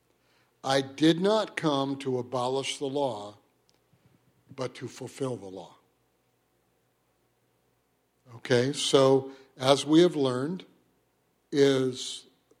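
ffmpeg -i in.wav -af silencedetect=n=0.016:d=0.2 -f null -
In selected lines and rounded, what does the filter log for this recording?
silence_start: 0.00
silence_end: 0.64 | silence_duration: 0.64
silence_start: 3.30
silence_end: 4.58 | silence_duration: 1.28
silence_start: 5.62
silence_end: 8.36 | silence_duration: 2.74
silence_start: 9.29
silence_end: 9.61 | silence_duration: 0.31
silence_start: 10.60
silence_end: 11.53 | silence_duration: 0.92
silence_start: 12.18
silence_end: 12.60 | silence_duration: 0.42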